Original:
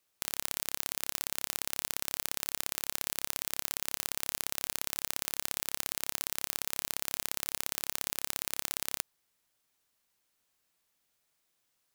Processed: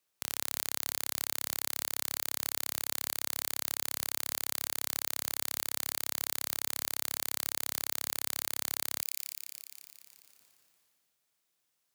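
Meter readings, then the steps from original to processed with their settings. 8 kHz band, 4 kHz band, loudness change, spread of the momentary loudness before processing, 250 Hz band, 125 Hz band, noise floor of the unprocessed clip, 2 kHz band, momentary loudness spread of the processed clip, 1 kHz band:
+1.0 dB, +0.5 dB, +1.0 dB, 1 LU, -0.5 dB, -1.5 dB, -78 dBFS, 0.0 dB, 2 LU, 0.0 dB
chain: HPF 80 Hz 12 dB/oct; thin delay 0.174 s, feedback 59%, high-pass 3000 Hz, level -6 dB; sustainer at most 20 dB/s; gain -3 dB

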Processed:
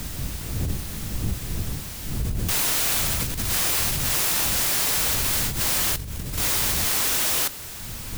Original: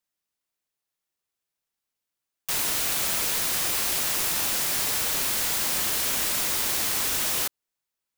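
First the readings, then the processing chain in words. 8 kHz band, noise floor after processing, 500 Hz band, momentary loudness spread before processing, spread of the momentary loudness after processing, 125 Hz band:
+2.0 dB, -35 dBFS, +3.0 dB, 2 LU, 12 LU, +16.5 dB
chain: zero-crossing step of -31.5 dBFS; wind noise 110 Hz -26 dBFS; negative-ratio compressor -24 dBFS, ratio -1

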